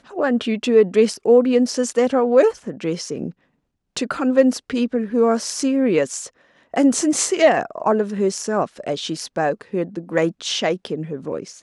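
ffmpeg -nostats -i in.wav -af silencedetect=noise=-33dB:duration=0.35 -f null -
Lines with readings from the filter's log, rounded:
silence_start: 3.31
silence_end: 3.97 | silence_duration: 0.66
silence_start: 6.27
silence_end: 6.74 | silence_duration: 0.46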